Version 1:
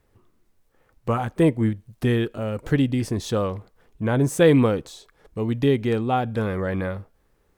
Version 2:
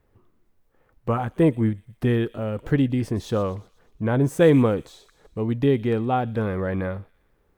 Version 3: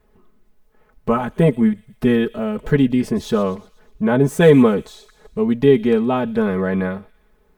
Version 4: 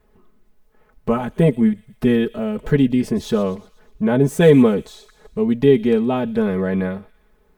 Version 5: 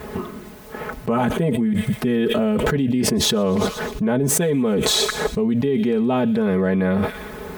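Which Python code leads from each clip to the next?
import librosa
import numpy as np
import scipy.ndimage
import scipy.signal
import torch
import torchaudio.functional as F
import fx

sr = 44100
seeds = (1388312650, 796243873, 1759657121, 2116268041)

y1 = fx.peak_eq(x, sr, hz=7600.0, db=-8.0, octaves=2.5)
y1 = fx.echo_wet_highpass(y1, sr, ms=121, feedback_pct=52, hz=3900.0, wet_db=-12.5)
y2 = y1 + 0.93 * np.pad(y1, (int(4.7 * sr / 1000.0), 0))[:len(y1)]
y2 = F.gain(torch.from_numpy(y2), 3.5).numpy()
y3 = fx.dynamic_eq(y2, sr, hz=1200.0, q=1.2, threshold_db=-34.0, ratio=4.0, max_db=-5)
y4 = scipy.signal.sosfilt(scipy.signal.butter(2, 83.0, 'highpass', fs=sr, output='sos'), y3)
y4 = fx.env_flatten(y4, sr, amount_pct=100)
y4 = F.gain(torch.from_numpy(y4), -11.0).numpy()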